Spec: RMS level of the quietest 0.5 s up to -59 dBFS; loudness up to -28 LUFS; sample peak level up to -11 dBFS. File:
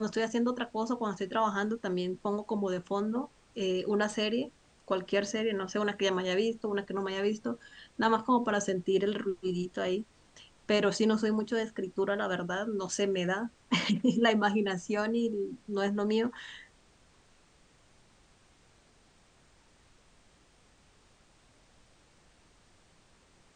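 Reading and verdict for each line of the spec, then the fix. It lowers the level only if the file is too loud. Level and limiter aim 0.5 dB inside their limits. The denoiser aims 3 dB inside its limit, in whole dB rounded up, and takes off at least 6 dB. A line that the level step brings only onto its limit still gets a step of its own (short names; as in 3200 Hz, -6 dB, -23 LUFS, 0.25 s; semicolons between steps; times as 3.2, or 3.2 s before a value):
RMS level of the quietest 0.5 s -63 dBFS: OK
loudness -31.0 LUFS: OK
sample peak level -13.0 dBFS: OK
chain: none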